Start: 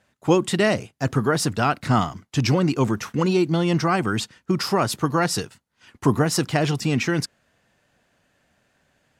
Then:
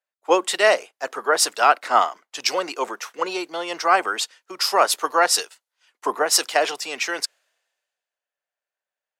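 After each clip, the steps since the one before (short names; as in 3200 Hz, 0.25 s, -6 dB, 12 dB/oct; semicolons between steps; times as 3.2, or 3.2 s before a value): HPF 490 Hz 24 dB/oct; three-band expander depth 70%; gain +4 dB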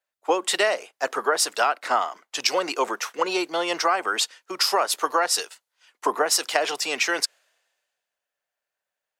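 compressor 12:1, threshold -21 dBFS, peak gain reduction 12.5 dB; gain +3.5 dB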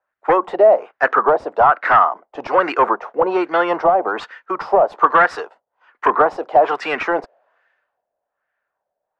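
sine folder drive 10 dB, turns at -3.5 dBFS; LFO low-pass sine 1.2 Hz 650–1700 Hz; gain -6 dB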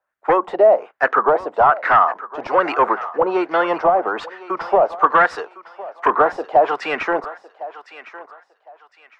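thinning echo 1.058 s, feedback 32%, high-pass 670 Hz, level -14.5 dB; gain -1 dB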